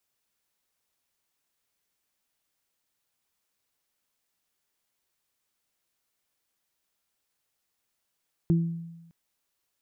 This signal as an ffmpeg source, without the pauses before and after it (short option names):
-f lavfi -i "aevalsrc='0.133*pow(10,-3*t/1.04)*sin(2*PI*167*t)+0.0596*pow(10,-3*t/0.42)*sin(2*PI*334*t)':d=0.61:s=44100"